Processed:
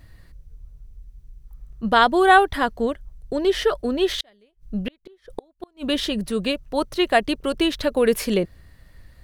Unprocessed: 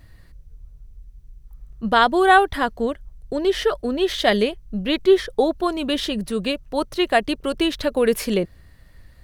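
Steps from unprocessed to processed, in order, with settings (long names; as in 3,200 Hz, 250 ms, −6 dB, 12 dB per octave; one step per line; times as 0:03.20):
0:04.15–0:05.87: gate with flip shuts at −14 dBFS, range −38 dB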